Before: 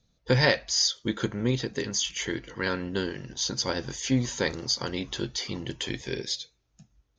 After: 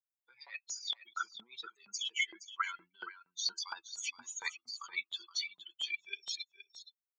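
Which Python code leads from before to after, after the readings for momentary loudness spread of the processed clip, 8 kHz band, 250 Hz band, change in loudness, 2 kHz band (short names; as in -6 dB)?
12 LU, -11.0 dB, -37.5 dB, -11.0 dB, -7.5 dB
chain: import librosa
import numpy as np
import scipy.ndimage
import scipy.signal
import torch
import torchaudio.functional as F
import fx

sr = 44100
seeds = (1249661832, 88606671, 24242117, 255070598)

p1 = fx.bin_expand(x, sr, power=3.0)
p2 = scipy.signal.sosfilt(scipy.signal.butter(2, 150.0, 'highpass', fs=sr, output='sos'), p1)
p3 = fx.over_compress(p2, sr, threshold_db=-42.0, ratio=-1.0)
p4 = p3 + 0.67 * np.pad(p3, (int(0.9 * sr / 1000.0), 0))[:len(p3)]
p5 = fx.dynamic_eq(p4, sr, hz=1000.0, q=1.2, threshold_db=-55.0, ratio=4.0, max_db=6)
p6 = fx.filter_lfo_highpass(p5, sr, shape='saw_up', hz=4.3, low_hz=870.0, high_hz=4400.0, q=1.6)
y = p6 + fx.echo_single(p6, sr, ms=470, db=-13.0, dry=0)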